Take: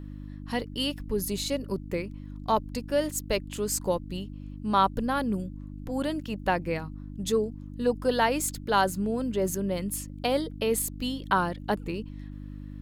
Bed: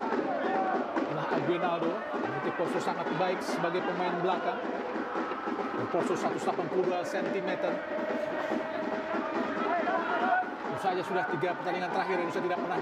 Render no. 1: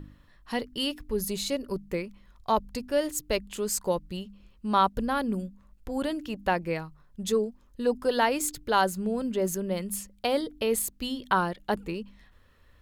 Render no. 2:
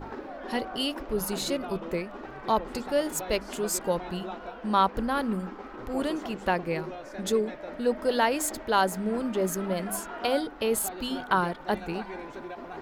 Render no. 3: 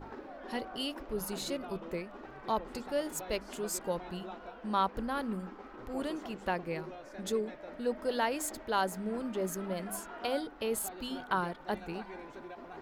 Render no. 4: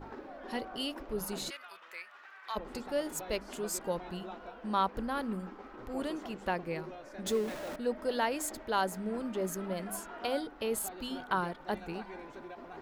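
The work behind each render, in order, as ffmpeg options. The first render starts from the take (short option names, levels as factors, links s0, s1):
-af "bandreject=f=50:t=h:w=4,bandreject=f=100:t=h:w=4,bandreject=f=150:t=h:w=4,bandreject=f=200:t=h:w=4,bandreject=f=250:t=h:w=4,bandreject=f=300:t=h:w=4"
-filter_complex "[1:a]volume=0.355[s0];[0:a][s0]amix=inputs=2:normalize=0"
-af "volume=0.447"
-filter_complex "[0:a]asplit=3[s0][s1][s2];[s0]afade=t=out:st=1.49:d=0.02[s3];[s1]highpass=f=1600:t=q:w=1.5,afade=t=in:st=1.49:d=0.02,afade=t=out:st=2.55:d=0.02[s4];[s2]afade=t=in:st=2.55:d=0.02[s5];[s3][s4][s5]amix=inputs=3:normalize=0,asettb=1/sr,asplit=3[s6][s7][s8];[s6]atrim=end=7.264[s9];[s7]atrim=start=7.26:end=7.76,asetpts=PTS-STARTPTS,afade=t=in:d=0.004:c=qsin,afade=t=out:st=0.496:d=0.004:c=qsin,aeval=exprs='val(0)+0.5*0.0119*sgn(val(0))':c=same[s10];[s8]atrim=start=7.756[s11];[s9][s10]acrossfade=d=0.004:c1=hsin:c2=qsin[s12];[s12][s11]acrossfade=d=0.004:c1=qsin:c2=hsin"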